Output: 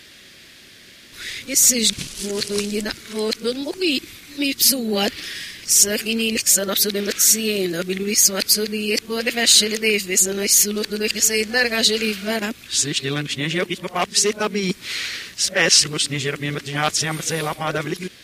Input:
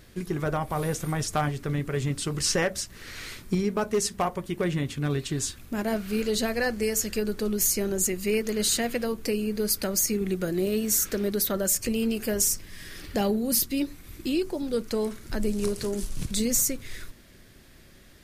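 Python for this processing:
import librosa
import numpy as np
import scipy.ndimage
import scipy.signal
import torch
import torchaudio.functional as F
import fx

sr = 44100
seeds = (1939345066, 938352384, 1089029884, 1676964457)

y = np.flip(x).copy()
y = fx.weighting(y, sr, curve='D')
y = y * 10.0 ** (4.5 / 20.0)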